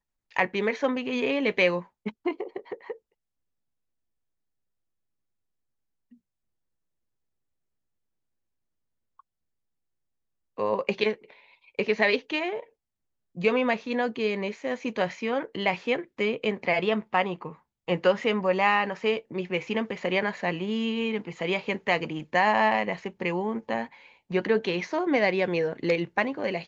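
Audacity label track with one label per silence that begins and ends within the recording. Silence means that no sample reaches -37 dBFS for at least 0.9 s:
2.930000	10.580000	silence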